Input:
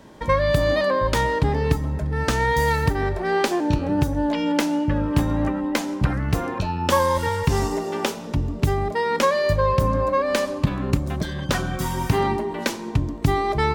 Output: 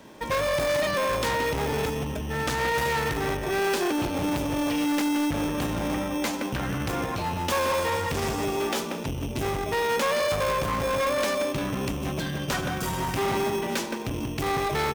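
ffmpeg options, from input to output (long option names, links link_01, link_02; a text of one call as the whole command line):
ffmpeg -i in.wav -filter_complex "[0:a]asplit=2[link_01][link_02];[link_02]adelay=160,lowpass=frequency=1300:poles=1,volume=-6dB,asplit=2[link_03][link_04];[link_04]adelay=160,lowpass=frequency=1300:poles=1,volume=0.35,asplit=2[link_05][link_06];[link_06]adelay=160,lowpass=frequency=1300:poles=1,volume=0.35,asplit=2[link_07][link_08];[link_08]adelay=160,lowpass=frequency=1300:poles=1,volume=0.35[link_09];[link_01][link_03][link_05][link_07][link_09]amix=inputs=5:normalize=0,acrossover=split=680[link_10][link_11];[link_10]acrusher=samples=15:mix=1:aa=0.000001[link_12];[link_12][link_11]amix=inputs=2:normalize=0,volume=22dB,asoftclip=hard,volume=-22dB,atempo=0.92,lowshelf=frequency=110:gain=-10.5" out.wav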